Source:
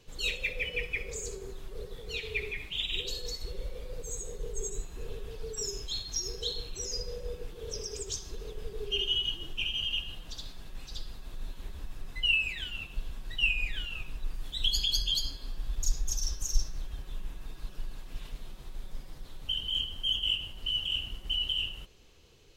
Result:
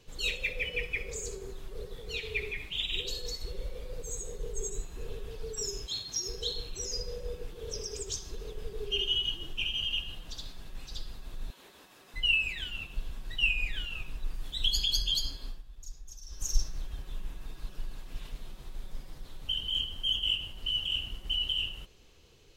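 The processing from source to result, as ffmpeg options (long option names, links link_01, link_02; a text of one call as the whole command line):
ffmpeg -i in.wav -filter_complex "[0:a]asettb=1/sr,asplit=3[link_01][link_02][link_03];[link_01]atrim=end=5.864[link_04];[link_02]atrim=start=5.86:end=6.28,asetpts=PTS-STARTPTS,afade=type=in:duration=0.004:curve=qsin,afade=type=out:start_time=0.416:duration=0.004:curve=qsin,highpass=97[link_05];[link_03]atrim=start=6.276[link_06];[link_04][link_05]acrossfade=duration=0.004:curve1=hsin:curve2=qsin[link_07];[link_07][link_06]acrossfade=duration=0.004:curve1=qsin:curve2=hsin,asettb=1/sr,asplit=3[link_08][link_09][link_10];[link_08]atrim=end=11.504[link_11];[link_09]atrim=start=11.5:end=12.14,asetpts=PTS-STARTPTS,afade=type=in:duration=0.004:curve=qsin,afade=type=out:start_time=0.636:duration=0.004:curve=qsin,highpass=350[link_12];[link_10]atrim=start=12.136[link_13];[link_11][link_12]acrossfade=duration=0.004:curve1=hsin:curve2=qsin[link_14];[link_14][link_13]acrossfade=duration=0.004:curve1=qsin:curve2=hsin,asplit=3[link_15][link_16][link_17];[link_15]atrim=end=15.63,asetpts=PTS-STARTPTS,afade=type=out:start_time=15.46:duration=0.17:silence=0.16788[link_18];[link_16]atrim=start=15.63:end=16.28,asetpts=PTS-STARTPTS,volume=-15.5dB[link_19];[link_17]atrim=start=16.28,asetpts=PTS-STARTPTS,afade=type=in:duration=0.17:silence=0.16788[link_20];[link_18][link_19][link_20]concat=n=3:v=0:a=1" out.wav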